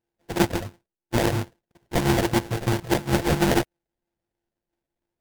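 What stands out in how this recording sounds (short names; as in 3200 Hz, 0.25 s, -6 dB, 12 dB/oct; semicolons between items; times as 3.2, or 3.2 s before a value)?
a buzz of ramps at a fixed pitch in blocks of 128 samples; phasing stages 12, 3 Hz, lowest notch 200–1700 Hz; aliases and images of a low sample rate 1200 Hz, jitter 20%; AAC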